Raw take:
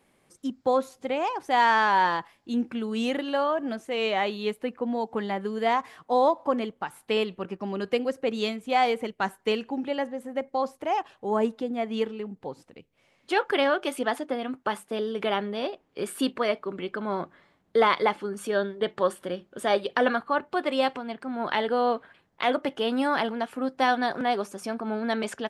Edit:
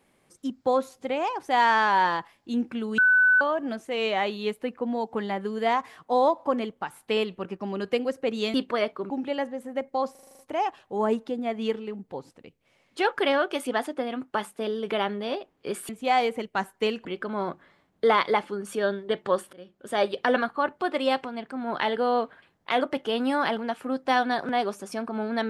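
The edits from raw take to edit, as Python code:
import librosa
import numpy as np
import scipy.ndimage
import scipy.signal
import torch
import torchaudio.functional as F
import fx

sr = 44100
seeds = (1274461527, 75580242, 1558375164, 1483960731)

y = fx.edit(x, sr, fx.bleep(start_s=2.98, length_s=0.43, hz=1500.0, db=-15.5),
    fx.swap(start_s=8.54, length_s=1.16, other_s=16.21, other_length_s=0.56),
    fx.stutter(start_s=10.71, slice_s=0.04, count=8),
    fx.fade_in_from(start_s=19.25, length_s=0.51, floor_db=-22.0), tone=tone)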